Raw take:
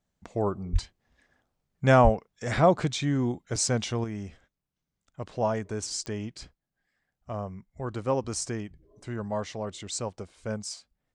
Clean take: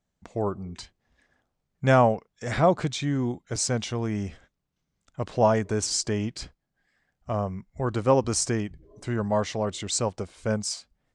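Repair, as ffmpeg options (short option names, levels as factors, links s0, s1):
-filter_complex "[0:a]adeclick=t=4,asplit=3[s0][s1][s2];[s0]afade=t=out:st=0.72:d=0.02[s3];[s1]highpass=f=140:w=0.5412,highpass=f=140:w=1.3066,afade=t=in:st=0.72:d=0.02,afade=t=out:st=0.84:d=0.02[s4];[s2]afade=t=in:st=0.84:d=0.02[s5];[s3][s4][s5]amix=inputs=3:normalize=0,asplit=3[s6][s7][s8];[s6]afade=t=out:st=2.03:d=0.02[s9];[s7]highpass=f=140:w=0.5412,highpass=f=140:w=1.3066,afade=t=in:st=2.03:d=0.02,afade=t=out:st=2.15:d=0.02[s10];[s8]afade=t=in:st=2.15:d=0.02[s11];[s9][s10][s11]amix=inputs=3:normalize=0,asetnsamples=n=441:p=0,asendcmd='4.04 volume volume 6.5dB',volume=1"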